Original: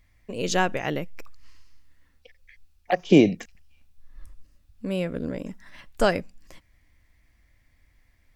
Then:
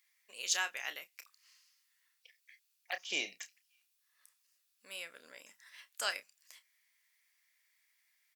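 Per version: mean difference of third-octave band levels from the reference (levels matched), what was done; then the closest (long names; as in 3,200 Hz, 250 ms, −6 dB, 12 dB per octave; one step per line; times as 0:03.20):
13.0 dB: high-pass filter 1,500 Hz 12 dB per octave
high-shelf EQ 4,700 Hz +10.5 dB
double-tracking delay 30 ms −11 dB
level −7.5 dB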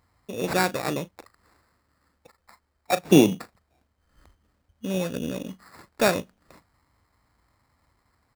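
7.5 dB: double-tracking delay 37 ms −14 dB
sample-rate reduction 3,100 Hz, jitter 0%
high-pass filter 84 Hz 12 dB per octave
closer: second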